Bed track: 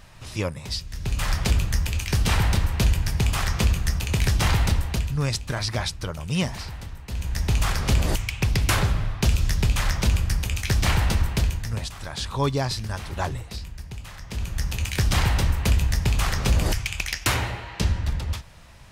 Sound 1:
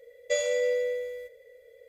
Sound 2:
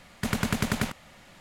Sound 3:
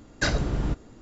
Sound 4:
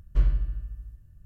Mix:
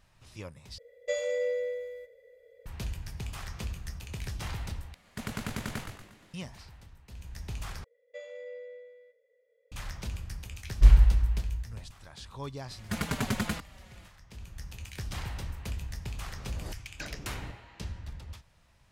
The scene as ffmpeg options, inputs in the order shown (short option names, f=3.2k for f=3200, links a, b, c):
-filter_complex "[1:a]asplit=2[a][b];[2:a]asplit=2[c][d];[0:a]volume=-16dB[e];[a]highshelf=f=3k:g=-7[f];[c]asplit=6[g][h][i][j][k][l];[h]adelay=118,afreqshift=-110,volume=-6dB[m];[i]adelay=236,afreqshift=-220,volume=-12.9dB[n];[j]adelay=354,afreqshift=-330,volume=-19.9dB[o];[k]adelay=472,afreqshift=-440,volume=-26.8dB[p];[l]adelay=590,afreqshift=-550,volume=-33.7dB[q];[g][m][n][o][p][q]amix=inputs=6:normalize=0[r];[b]acrossover=split=170 3500:gain=0.0708 1 0.112[s][t][u];[s][t][u]amix=inputs=3:normalize=0[v];[4:a]equalizer=f=63:t=o:w=0.75:g=13[w];[d]asplit=2[x][y];[y]adelay=4.7,afreqshift=-1.9[z];[x][z]amix=inputs=2:normalize=1[aa];[e]asplit=4[ab][ac][ad][ae];[ab]atrim=end=0.784[af];[f]atrim=end=1.88,asetpts=PTS-STARTPTS,volume=-3.5dB[ag];[ac]atrim=start=2.656:end=4.944[ah];[r]atrim=end=1.4,asetpts=PTS-STARTPTS,volume=-9.5dB[ai];[ad]atrim=start=6.336:end=7.844[aj];[v]atrim=end=1.88,asetpts=PTS-STARTPTS,volume=-16.5dB[ak];[ae]atrim=start=9.716[al];[w]atrim=end=1.25,asetpts=PTS-STARTPTS,volume=-0.5dB,afade=t=in:d=0.004:c=hsin,afade=t=out:st=1.246:d=0.004:c=hsin,adelay=470106S[am];[aa]atrim=end=1.4,asetpts=PTS-STARTPTS,volume=-0.5dB,afade=t=in:d=0.004:c=hsin,afade=t=out:st=1.396:d=0.004:c=hsin,adelay=559188S[an];[3:a]atrim=end=1.01,asetpts=PTS-STARTPTS,volume=-17dB,afade=t=in:d=0.004:c=hsin,afade=t=out:st=1.006:d=0.004:c=hsin,adelay=16780[ao];[af][ag]acrossfade=d=0.004:c1=hsin:c2=hsin[ap];[ap][ah]acrossfade=d=0.004:c1=hsin:c2=hsin[aq];[aq][ai]acrossfade=d=0.004:c1=hsin:c2=hsin[ar];[ar][aj]acrossfade=d=0.004:c1=hsin:c2=hsin[as];[as][ak]acrossfade=d=0.004:c1=hsin:c2=hsin[at];[at][al]acrossfade=d=0.004:c1=hsin:c2=hsin[au];[au][am][an][ao]amix=inputs=4:normalize=0"